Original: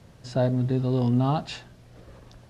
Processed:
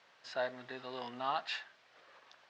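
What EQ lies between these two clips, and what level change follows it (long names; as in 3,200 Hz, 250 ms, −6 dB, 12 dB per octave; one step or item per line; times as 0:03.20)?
high-pass filter 1,200 Hz 12 dB per octave
dynamic equaliser 1,800 Hz, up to +5 dB, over −59 dBFS, Q 3.4
high-frequency loss of the air 170 metres
+1.5 dB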